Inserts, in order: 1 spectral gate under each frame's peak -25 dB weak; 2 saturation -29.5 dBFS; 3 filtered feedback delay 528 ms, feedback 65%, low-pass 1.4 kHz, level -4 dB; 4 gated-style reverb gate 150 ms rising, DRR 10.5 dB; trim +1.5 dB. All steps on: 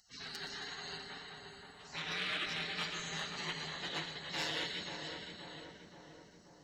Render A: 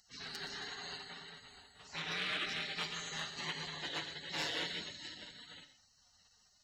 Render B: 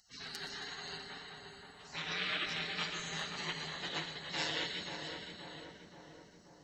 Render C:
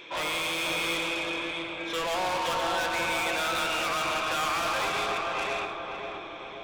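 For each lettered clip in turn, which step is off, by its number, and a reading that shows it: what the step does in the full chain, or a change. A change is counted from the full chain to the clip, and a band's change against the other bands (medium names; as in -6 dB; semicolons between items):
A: 3, momentary loudness spread change -1 LU; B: 2, distortion -22 dB; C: 1, 125 Hz band -7.0 dB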